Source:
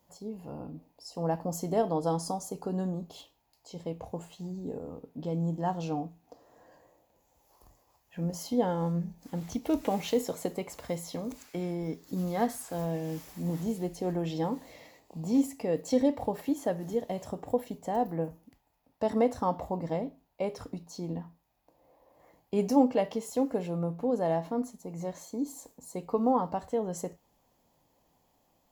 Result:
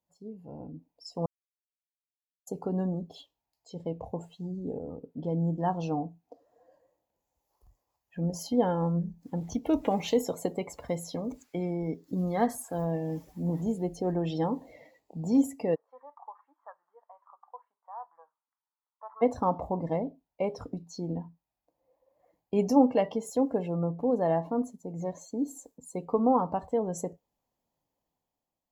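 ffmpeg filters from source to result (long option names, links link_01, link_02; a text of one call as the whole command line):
ffmpeg -i in.wav -filter_complex "[0:a]asplit=3[link_01][link_02][link_03];[link_01]afade=type=out:start_time=15.74:duration=0.02[link_04];[link_02]asuperpass=centerf=1200:order=4:qfactor=2.5,afade=type=in:start_time=15.74:duration=0.02,afade=type=out:start_time=19.21:duration=0.02[link_05];[link_03]afade=type=in:start_time=19.21:duration=0.02[link_06];[link_04][link_05][link_06]amix=inputs=3:normalize=0,asplit=3[link_07][link_08][link_09];[link_07]atrim=end=1.26,asetpts=PTS-STARTPTS,afade=type=out:start_time=1.256:duration=0.004:curve=hsin[link_10];[link_08]atrim=start=1.26:end=2.47,asetpts=PTS-STARTPTS,volume=0[link_11];[link_09]atrim=start=2.47,asetpts=PTS-STARTPTS,afade=type=in:duration=0.004:curve=hsin[link_12];[link_10][link_11][link_12]concat=n=3:v=0:a=1,dynaudnorm=framelen=110:gausssize=13:maxgain=6dB,afftdn=noise_reduction=16:noise_floor=-42,volume=-4dB" out.wav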